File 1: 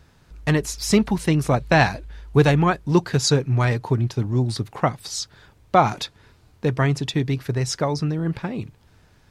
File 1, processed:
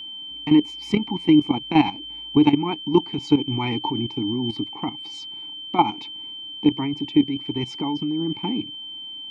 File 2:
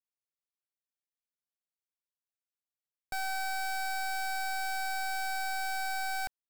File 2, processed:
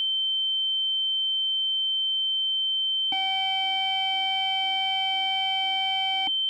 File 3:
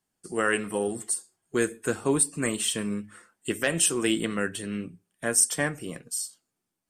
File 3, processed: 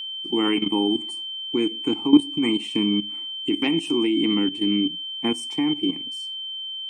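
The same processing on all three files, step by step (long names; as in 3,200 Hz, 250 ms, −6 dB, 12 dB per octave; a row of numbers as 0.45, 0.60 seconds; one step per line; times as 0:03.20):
formant filter u
parametric band 210 Hz +2.5 dB 0.94 octaves
in parallel at +2 dB: downward compressor 8 to 1, threshold −39 dBFS
on the sum: steady tone 3,100 Hz −38 dBFS
output level in coarse steps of 12 dB
loudness normalisation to −23 LKFS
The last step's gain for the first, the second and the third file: +12.0, +22.0, +15.5 decibels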